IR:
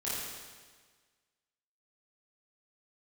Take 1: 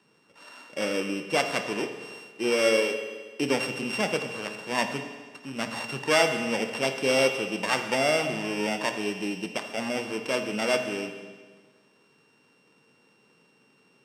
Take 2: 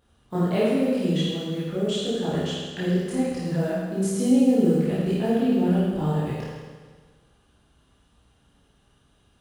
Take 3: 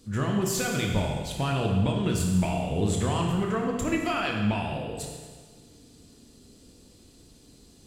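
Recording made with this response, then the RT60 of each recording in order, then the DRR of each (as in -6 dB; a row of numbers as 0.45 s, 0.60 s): 2; 1.5 s, 1.5 s, 1.5 s; 6.0 dB, -10.0 dB, 0.0 dB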